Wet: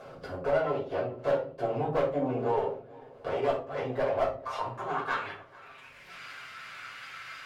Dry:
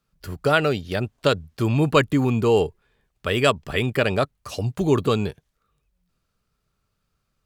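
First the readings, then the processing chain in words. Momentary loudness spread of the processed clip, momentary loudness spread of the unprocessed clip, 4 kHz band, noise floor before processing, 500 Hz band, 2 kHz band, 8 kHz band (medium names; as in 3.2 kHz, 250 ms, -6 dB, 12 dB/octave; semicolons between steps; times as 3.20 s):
17 LU, 10 LU, -16.5 dB, -75 dBFS, -6.5 dB, -10.5 dB, under -15 dB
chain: comb filter that takes the minimum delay 7.6 ms; upward compressor, threshold -22 dBFS; bass shelf 490 Hz -8 dB; compression 2:1, threshold -43 dBFS, peak gain reduction 14.5 dB; band-pass sweep 540 Hz -> 2 kHz, 3.92–5.56 s; overload inside the chain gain 35.5 dB; peaking EQ 110 Hz +5 dB 1.4 oct; shuffle delay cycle 737 ms, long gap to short 1.5:1, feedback 39%, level -23 dB; simulated room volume 270 m³, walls furnished, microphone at 5.4 m; trim +6 dB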